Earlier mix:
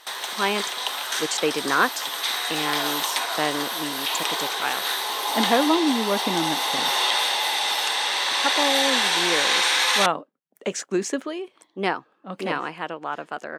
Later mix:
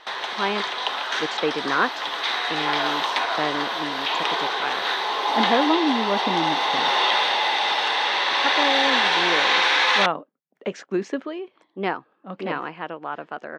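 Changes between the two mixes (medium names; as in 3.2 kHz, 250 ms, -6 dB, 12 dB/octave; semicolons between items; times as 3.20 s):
background +5.5 dB; master: add distance through air 230 m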